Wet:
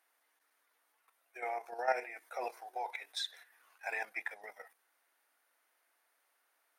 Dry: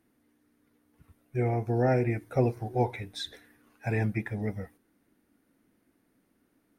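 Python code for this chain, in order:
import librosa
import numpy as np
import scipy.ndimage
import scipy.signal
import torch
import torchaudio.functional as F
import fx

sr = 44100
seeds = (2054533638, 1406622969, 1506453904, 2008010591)

y = scipy.signal.sosfilt(scipy.signal.butter(4, 710.0, 'highpass', fs=sr, output='sos'), x)
y = fx.level_steps(y, sr, step_db=10)
y = F.gain(torch.from_numpy(y), 3.0).numpy()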